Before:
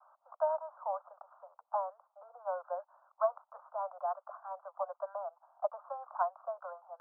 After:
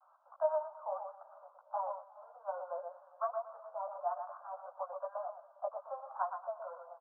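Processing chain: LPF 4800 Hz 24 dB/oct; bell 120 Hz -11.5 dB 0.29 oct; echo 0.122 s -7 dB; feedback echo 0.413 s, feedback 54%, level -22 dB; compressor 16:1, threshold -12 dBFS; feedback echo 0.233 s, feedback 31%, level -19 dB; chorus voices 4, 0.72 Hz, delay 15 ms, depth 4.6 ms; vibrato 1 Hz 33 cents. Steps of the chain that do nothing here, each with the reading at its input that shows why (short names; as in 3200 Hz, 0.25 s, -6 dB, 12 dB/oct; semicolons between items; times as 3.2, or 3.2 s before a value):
LPF 4800 Hz: input band ends at 1500 Hz; bell 120 Hz: input band starts at 510 Hz; compressor, threshold -12 dBFS: input peak -18.5 dBFS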